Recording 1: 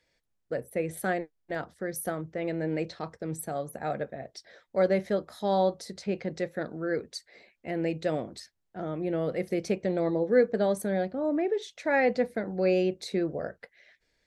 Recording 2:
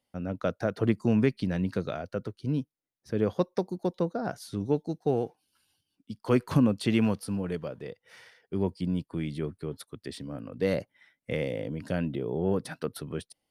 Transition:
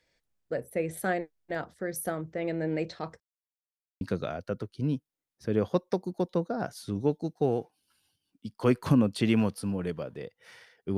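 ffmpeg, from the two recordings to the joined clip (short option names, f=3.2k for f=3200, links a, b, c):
-filter_complex "[0:a]apad=whole_dur=10.97,atrim=end=10.97,asplit=2[a][b];[a]atrim=end=3.2,asetpts=PTS-STARTPTS,afade=t=out:st=3.196:d=0.004:c=hsin[c];[b]atrim=start=3.2:end=4.01,asetpts=PTS-STARTPTS,volume=0[d];[1:a]atrim=start=1.66:end=8.62,asetpts=PTS-STARTPTS,afade=t=in:d=0.004:c=hsin[e];[c][d][e]concat=n=3:v=0:a=1"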